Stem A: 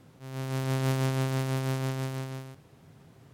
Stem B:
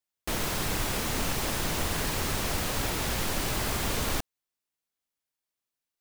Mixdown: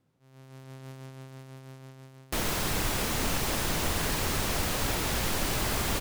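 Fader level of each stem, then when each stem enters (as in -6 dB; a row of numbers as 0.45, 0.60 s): -17.0, +0.5 dB; 0.00, 2.05 s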